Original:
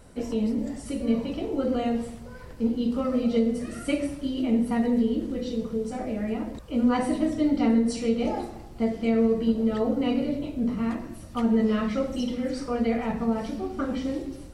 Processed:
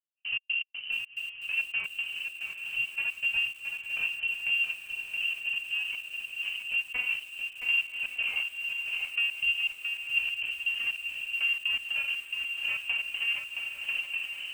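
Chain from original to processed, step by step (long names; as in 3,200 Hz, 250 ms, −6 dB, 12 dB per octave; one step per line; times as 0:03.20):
running median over 41 samples
gate pattern "..x.x.xx.." 121 BPM −60 dB
dynamic equaliser 250 Hz, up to +4 dB, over −38 dBFS, Q 2.8
voice inversion scrambler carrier 3,000 Hz
low-shelf EQ 120 Hz +4 dB
feedback delay with all-pass diffusion 1,043 ms, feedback 48%, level −12 dB
downward compressor 2 to 1, threshold −32 dBFS, peak gain reduction 9.5 dB
feedback echo at a low word length 671 ms, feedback 35%, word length 8 bits, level −6 dB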